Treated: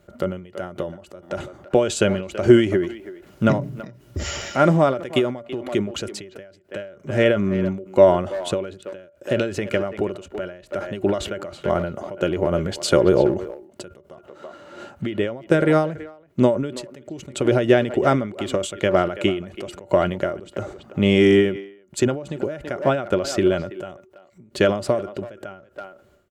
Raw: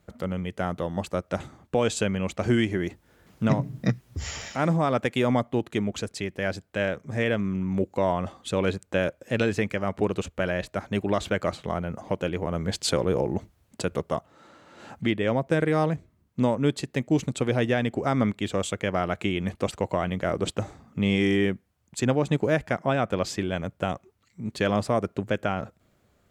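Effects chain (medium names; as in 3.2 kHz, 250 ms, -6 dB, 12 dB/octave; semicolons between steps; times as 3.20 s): small resonant body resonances 370/580/1400/2900 Hz, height 12 dB, ringing for 70 ms; speakerphone echo 330 ms, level -14 dB; endings held to a fixed fall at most 100 dB/s; trim +5 dB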